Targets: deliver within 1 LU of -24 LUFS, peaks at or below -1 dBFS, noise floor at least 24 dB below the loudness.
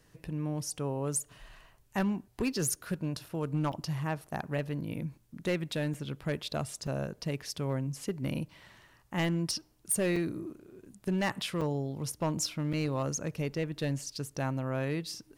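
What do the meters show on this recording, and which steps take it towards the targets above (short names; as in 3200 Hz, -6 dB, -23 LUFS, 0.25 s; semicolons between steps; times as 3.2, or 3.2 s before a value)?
clipped 0.8%; flat tops at -24.0 dBFS; dropouts 6; longest dropout 4.3 ms; loudness -34.0 LUFS; peak -24.0 dBFS; loudness target -24.0 LUFS
-> clip repair -24 dBFS; interpolate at 3.72/5.94/6.87/10.16/11.61/12.73, 4.3 ms; gain +10 dB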